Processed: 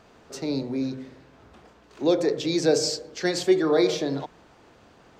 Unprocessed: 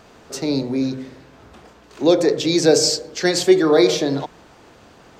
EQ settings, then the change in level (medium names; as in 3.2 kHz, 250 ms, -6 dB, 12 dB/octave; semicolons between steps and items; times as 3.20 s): treble shelf 6.1 kHz -5.5 dB; -6.5 dB